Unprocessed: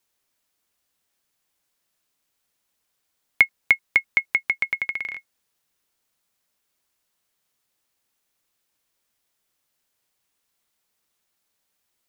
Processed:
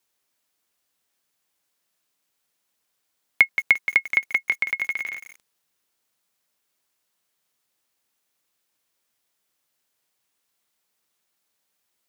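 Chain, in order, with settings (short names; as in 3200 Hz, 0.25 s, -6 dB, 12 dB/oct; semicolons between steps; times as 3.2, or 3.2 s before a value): low shelf 73 Hz -11.5 dB; lo-fi delay 0.174 s, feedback 35%, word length 6-bit, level -9 dB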